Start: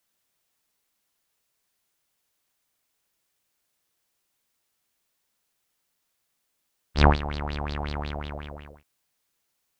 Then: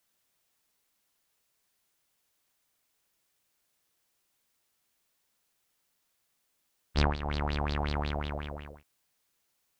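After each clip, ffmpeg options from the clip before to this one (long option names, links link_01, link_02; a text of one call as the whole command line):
ffmpeg -i in.wav -af "acompressor=threshold=-23dB:ratio=10" out.wav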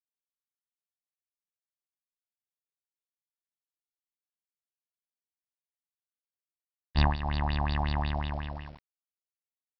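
ffmpeg -i in.wav -af "aecho=1:1:1.1:0.74,aresample=11025,aeval=exprs='val(0)*gte(abs(val(0)),0.00447)':channel_layout=same,aresample=44100,volume=-1dB" out.wav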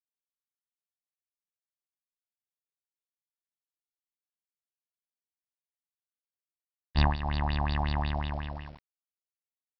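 ffmpeg -i in.wav -af anull out.wav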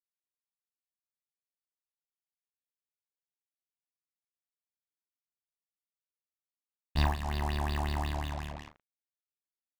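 ffmpeg -i in.wav -filter_complex "[0:a]acrusher=bits=5:mix=0:aa=0.5,asplit=2[link_01][link_02];[link_02]adelay=38,volume=-9.5dB[link_03];[link_01][link_03]amix=inputs=2:normalize=0,volume=-3.5dB" out.wav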